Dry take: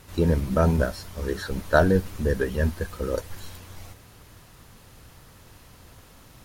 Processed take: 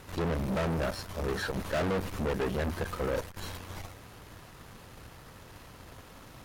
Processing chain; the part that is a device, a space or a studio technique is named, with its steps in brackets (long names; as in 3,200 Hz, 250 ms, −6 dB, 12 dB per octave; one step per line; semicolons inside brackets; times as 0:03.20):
tube preamp driven hard (tube saturation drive 34 dB, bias 0.75; low-shelf EQ 190 Hz −5.5 dB; high-shelf EQ 3,800 Hz −8 dB)
level +8 dB